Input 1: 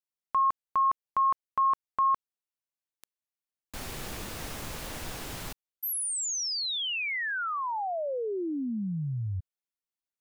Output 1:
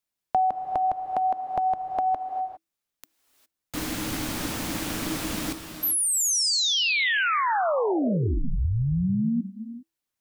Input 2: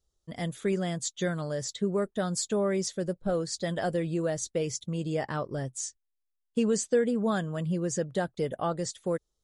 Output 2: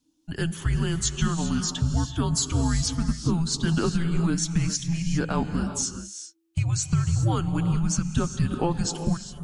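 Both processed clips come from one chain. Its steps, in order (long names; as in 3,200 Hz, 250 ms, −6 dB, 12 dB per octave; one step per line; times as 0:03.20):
downward compressor, threshold −27 dBFS
frequency shifter −330 Hz
reverb whose tail is shaped and stops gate 430 ms rising, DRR 8 dB
level +7.5 dB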